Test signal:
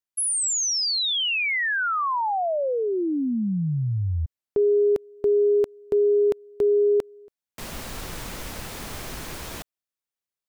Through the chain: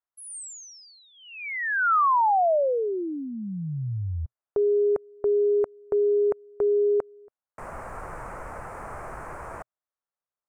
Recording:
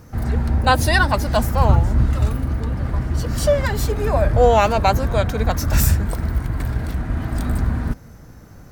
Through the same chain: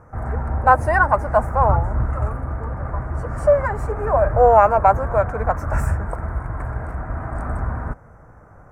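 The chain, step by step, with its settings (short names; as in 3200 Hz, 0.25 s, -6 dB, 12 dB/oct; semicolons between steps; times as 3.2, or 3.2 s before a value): EQ curve 120 Hz 0 dB, 250 Hz -5 dB, 620 Hz +8 dB, 1300 Hz +9 dB, 2300 Hz -5 dB, 3500 Hz -29 dB, 8700 Hz -8 dB, 14000 Hz -24 dB; gain -4.5 dB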